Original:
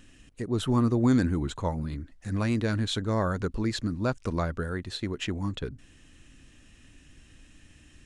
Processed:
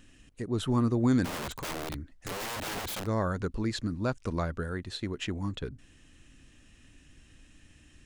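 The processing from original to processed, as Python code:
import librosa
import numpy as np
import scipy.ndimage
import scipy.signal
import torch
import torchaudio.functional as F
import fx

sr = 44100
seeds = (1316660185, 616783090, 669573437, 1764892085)

y = fx.overflow_wrap(x, sr, gain_db=28.5, at=(1.24, 3.05), fade=0.02)
y = y * 10.0 ** (-2.5 / 20.0)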